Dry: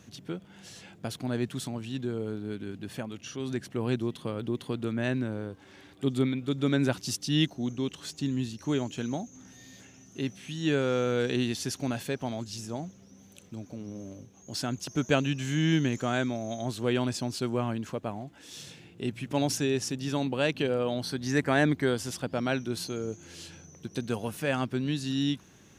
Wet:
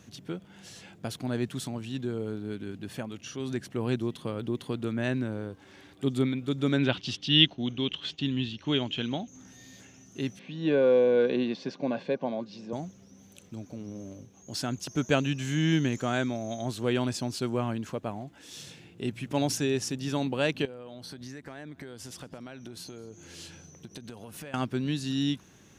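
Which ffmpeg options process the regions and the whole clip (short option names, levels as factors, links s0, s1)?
-filter_complex "[0:a]asettb=1/sr,asplit=3[s0][s1][s2];[s0]atrim=end=6.784[s3];[s1]atrim=start=6.78:end=9.28,asetpts=PTS-STARTPTS,afade=t=in:d=0.004:c=qsin,afade=t=out:st=2.496:d=0.004:c=qsin,agate=range=0.0224:threshold=0.00501:ratio=3:release=100:detection=peak,lowpass=f=3200:t=q:w=4.5[s4];[s2]atrim=start=9.276[s5];[s3][s4]acrossfade=d=0.004:c1=hsin:c2=qsin[s6];[s6][s5]acrossfade=d=0.004:c1=qsin:c2=hsin,asettb=1/sr,asplit=3[s7][s8][s9];[s7]atrim=end=10.394[s10];[s8]atrim=start=10.39:end=12.73,asetpts=PTS-STARTPTS,afade=t=in:d=0.004:c=qsin,afade=t=out:st=2.336:d=0.004:c=qsin,asuperstop=centerf=1300:order=20:qfactor=6.2,highpass=f=170:w=0.5412,highpass=f=170:w=1.3066,equalizer=f=180:t=q:w=4:g=5,equalizer=f=530:t=q:w=4:g=10,equalizer=f=1200:t=q:w=4:g=6,equalizer=f=1800:t=q:w=4:g=-6,equalizer=f=3100:t=q:w=4:g=-7,lowpass=f=3800:w=0.5412,lowpass=f=3800:w=1.3066[s11];[s9]atrim=start=12.726[s12];[s10][s11]acrossfade=d=0.004:c1=hsin:c2=qsin[s13];[s13][s12]acrossfade=d=0.004:c1=qsin:c2=hsin,asettb=1/sr,asplit=3[s14][s15][s16];[s14]atrim=end=20.654[s17];[s15]atrim=start=20.65:end=24.54,asetpts=PTS-STARTPTS,afade=t=in:d=0.004:c=qsin,afade=t=out:st=3.886:d=0.004:c=qsin,acompressor=threshold=0.0126:ratio=20:attack=3.2:release=140:knee=1:detection=peak,aecho=1:1:216:0.0708,atrim=end_sample=171549[s18];[s16]atrim=start=24.536[s19];[s17][s18]acrossfade=d=0.004:c1=hsin:c2=qsin[s20];[s20][s19]acrossfade=d=0.004:c1=qsin:c2=hsin"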